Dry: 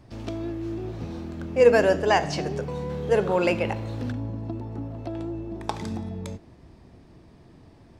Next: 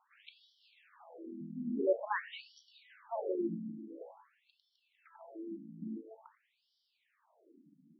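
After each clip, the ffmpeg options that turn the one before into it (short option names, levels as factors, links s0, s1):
-af "afftfilt=real='re*between(b*sr/1024,210*pow(4200/210,0.5+0.5*sin(2*PI*0.48*pts/sr))/1.41,210*pow(4200/210,0.5+0.5*sin(2*PI*0.48*pts/sr))*1.41)':imag='im*between(b*sr/1024,210*pow(4200/210,0.5+0.5*sin(2*PI*0.48*pts/sr))/1.41,210*pow(4200/210,0.5+0.5*sin(2*PI*0.48*pts/sr))*1.41)':win_size=1024:overlap=0.75,volume=0.447"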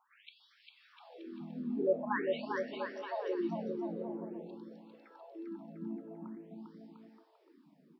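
-af "aecho=1:1:400|700|925|1094|1220:0.631|0.398|0.251|0.158|0.1"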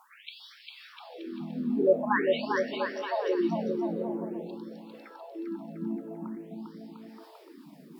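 -af "aemphasis=mode=production:type=cd,areverse,acompressor=mode=upward:threshold=0.00316:ratio=2.5,areverse,volume=2.51"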